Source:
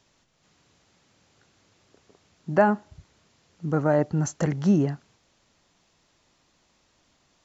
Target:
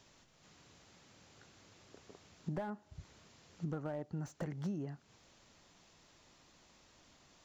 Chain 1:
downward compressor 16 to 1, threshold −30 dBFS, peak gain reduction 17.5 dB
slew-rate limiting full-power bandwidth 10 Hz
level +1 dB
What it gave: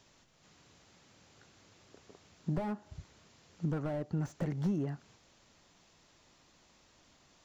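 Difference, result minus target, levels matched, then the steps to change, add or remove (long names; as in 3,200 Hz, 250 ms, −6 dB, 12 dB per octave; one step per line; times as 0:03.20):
downward compressor: peak gain reduction −7 dB
change: downward compressor 16 to 1, threshold −37.5 dBFS, peak gain reduction 24.5 dB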